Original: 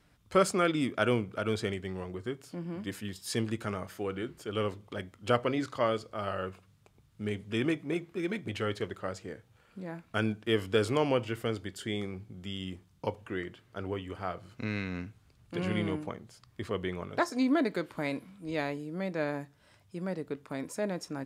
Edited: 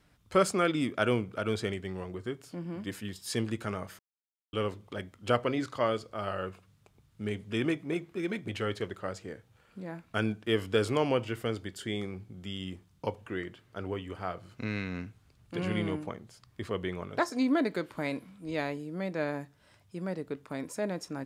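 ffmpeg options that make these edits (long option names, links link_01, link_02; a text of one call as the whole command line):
ffmpeg -i in.wav -filter_complex "[0:a]asplit=3[link_01][link_02][link_03];[link_01]atrim=end=3.99,asetpts=PTS-STARTPTS,afade=type=out:start_time=3.986:duration=0.004:curve=hsin[link_04];[link_02]atrim=start=3.99:end=4.53,asetpts=PTS-STARTPTS,volume=0[link_05];[link_03]atrim=start=4.53,asetpts=PTS-STARTPTS,afade=type=in:duration=0.004:curve=hsin[link_06];[link_04][link_05][link_06]concat=n=3:v=0:a=1" out.wav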